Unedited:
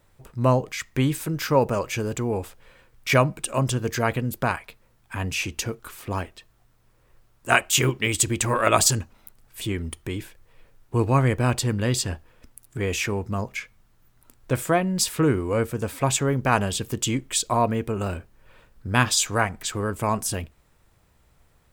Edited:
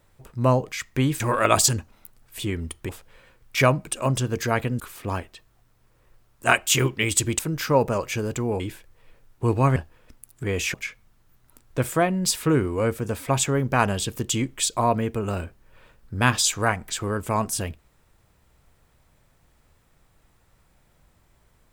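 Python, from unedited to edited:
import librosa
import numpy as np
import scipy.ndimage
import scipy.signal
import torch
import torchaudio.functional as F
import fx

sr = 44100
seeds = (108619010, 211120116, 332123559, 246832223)

y = fx.edit(x, sr, fx.swap(start_s=1.2, length_s=1.21, other_s=8.42, other_length_s=1.69),
    fx.cut(start_s=4.32, length_s=1.51),
    fx.cut(start_s=11.27, length_s=0.83),
    fx.cut(start_s=13.08, length_s=0.39), tone=tone)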